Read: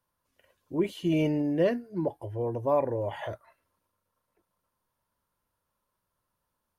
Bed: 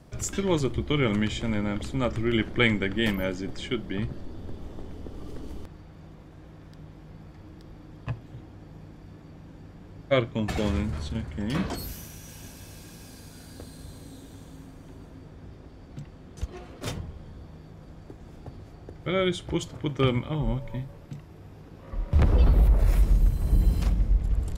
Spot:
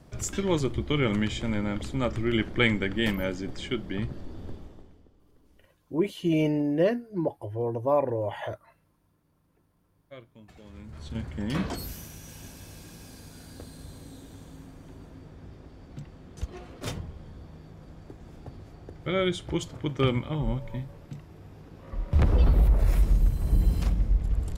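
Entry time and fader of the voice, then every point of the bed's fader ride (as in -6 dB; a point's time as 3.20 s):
5.20 s, +1.5 dB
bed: 4.51 s -1 dB
5.20 s -23.5 dB
10.65 s -23.5 dB
11.20 s -1 dB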